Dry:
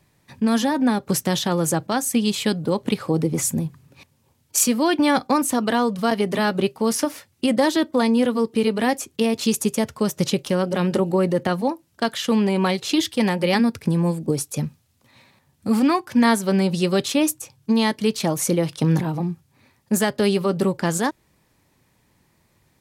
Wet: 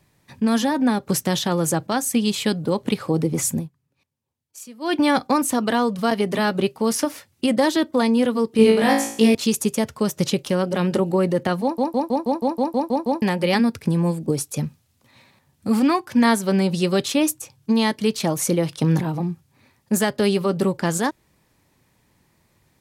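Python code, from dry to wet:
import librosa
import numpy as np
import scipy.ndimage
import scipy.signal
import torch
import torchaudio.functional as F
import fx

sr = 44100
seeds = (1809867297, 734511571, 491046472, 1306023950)

y = fx.room_flutter(x, sr, wall_m=3.1, rt60_s=0.53, at=(8.57, 9.35))
y = fx.edit(y, sr, fx.fade_down_up(start_s=3.56, length_s=1.38, db=-21.0, fade_s=0.14),
    fx.stutter_over(start_s=11.62, slice_s=0.16, count=10), tone=tone)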